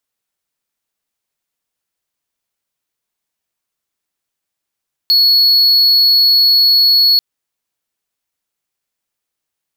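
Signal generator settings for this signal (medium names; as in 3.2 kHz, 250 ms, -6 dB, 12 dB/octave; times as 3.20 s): tone triangle 4.37 kHz -5 dBFS 2.09 s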